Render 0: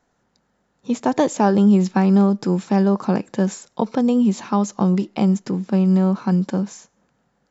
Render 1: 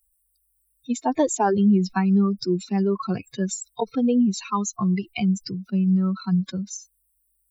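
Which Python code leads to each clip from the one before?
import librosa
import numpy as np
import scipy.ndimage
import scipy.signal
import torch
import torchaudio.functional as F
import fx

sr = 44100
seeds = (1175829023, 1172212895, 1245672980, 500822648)

y = fx.bin_expand(x, sr, power=3.0)
y = fx.dynamic_eq(y, sr, hz=4500.0, q=1.2, threshold_db=-49.0, ratio=4.0, max_db=-4)
y = fx.env_flatten(y, sr, amount_pct=50)
y = F.gain(torch.from_numpy(y), -2.0).numpy()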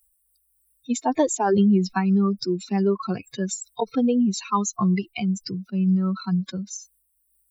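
y = fx.low_shelf(x, sr, hz=180.0, db=-5.5)
y = fx.am_noise(y, sr, seeds[0], hz=5.7, depth_pct=60)
y = F.gain(torch.from_numpy(y), 5.5).numpy()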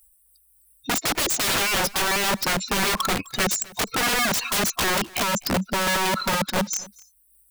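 y = (np.mod(10.0 ** (25.5 / 20.0) * x + 1.0, 2.0) - 1.0) / 10.0 ** (25.5 / 20.0)
y = y + 10.0 ** (-22.5 / 20.0) * np.pad(y, (int(255 * sr / 1000.0), 0))[:len(y)]
y = F.gain(torch.from_numpy(y), 8.0).numpy()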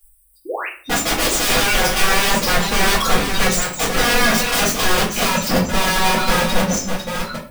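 y = fx.reverse_delay(x, sr, ms=613, wet_db=-6.5)
y = fx.spec_paint(y, sr, seeds[1], shape='rise', start_s=0.45, length_s=0.23, low_hz=310.0, high_hz=3000.0, level_db=-31.0)
y = fx.room_shoebox(y, sr, seeds[2], volume_m3=36.0, walls='mixed', distance_m=2.0)
y = F.gain(torch.from_numpy(y), -6.0).numpy()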